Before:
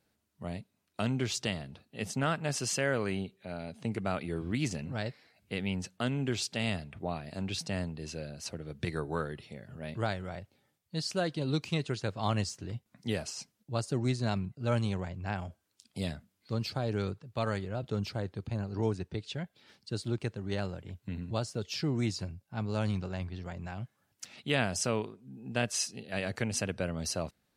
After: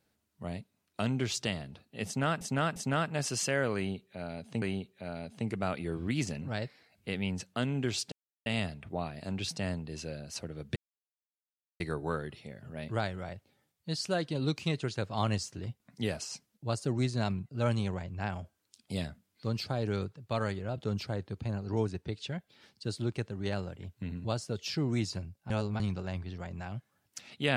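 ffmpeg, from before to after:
ffmpeg -i in.wav -filter_complex "[0:a]asplit=8[link_01][link_02][link_03][link_04][link_05][link_06][link_07][link_08];[link_01]atrim=end=2.412[link_09];[link_02]atrim=start=2.058:end=2.412[link_10];[link_03]atrim=start=2.058:end=3.922[link_11];[link_04]atrim=start=3.058:end=6.56,asetpts=PTS-STARTPTS,afade=type=out:start_time=3.498:duration=0.004:curve=hsin,apad=pad_dur=0.34[link_12];[link_05]atrim=start=6.56:end=8.86,asetpts=PTS-STARTPTS,afade=type=in:duration=0.004:curve=hsin,afade=type=out:start_time=2.296:duration=0.004:curve=hsin,apad=pad_dur=1.04[link_13];[link_06]atrim=start=8.86:end=22.562,asetpts=PTS-STARTPTS,afade=type=in:duration=0.004:curve=hsin[link_14];[link_07]atrim=start=22.558:end=22.862,asetpts=PTS-STARTPTS,areverse[link_15];[link_08]atrim=start=22.858[link_16];[link_09][link_10]acrossfade=duration=0.004:curve1=hsin:curve2=hsin[link_17];[link_17][link_11]acrossfade=duration=0.004:curve1=hsin:curve2=hsin[link_18];[link_12][link_13][link_14]concat=n=3:v=0:a=1[link_19];[link_18][link_19]acrossfade=duration=0.004:curve1=hsin:curve2=hsin[link_20];[link_20][link_15]acrossfade=duration=0.004:curve1=hsin:curve2=hsin[link_21];[link_21][link_16]acrossfade=duration=0.004:curve1=hsin:curve2=hsin" out.wav

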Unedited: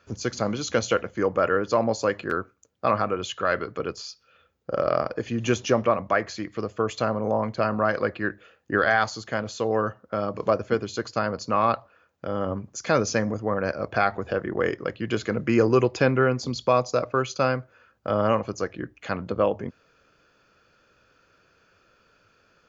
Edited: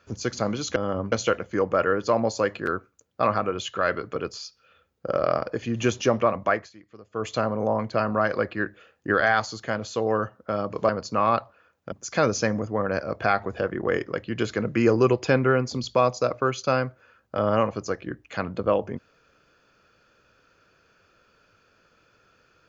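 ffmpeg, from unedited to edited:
ffmpeg -i in.wav -filter_complex "[0:a]asplit=7[link_01][link_02][link_03][link_04][link_05][link_06][link_07];[link_01]atrim=end=0.762[link_08];[link_02]atrim=start=12.278:end=12.642[link_09];[link_03]atrim=start=0.758:end=6.34,asetpts=PTS-STARTPTS,afade=type=out:start_time=5.412:duration=0.17:silence=0.141254[link_10];[link_04]atrim=start=6.34:end=6.74,asetpts=PTS-STARTPTS,volume=-17dB[link_11];[link_05]atrim=start=6.74:end=10.532,asetpts=PTS-STARTPTS,afade=type=in:duration=0.17:silence=0.141254[link_12];[link_06]atrim=start=11.248:end=12.282[link_13];[link_07]atrim=start=12.638[link_14];[link_08][link_09]acrossfade=duration=0.004:curve1=hsin:curve2=hsin[link_15];[link_10][link_11][link_12]concat=n=3:v=0:a=1[link_16];[link_15][link_16]acrossfade=duration=0.004:curve1=hsin:curve2=hsin[link_17];[link_17][link_13]acrossfade=duration=0.004:curve1=hsin:curve2=hsin[link_18];[link_18][link_14]acrossfade=duration=0.004:curve1=hsin:curve2=hsin" out.wav

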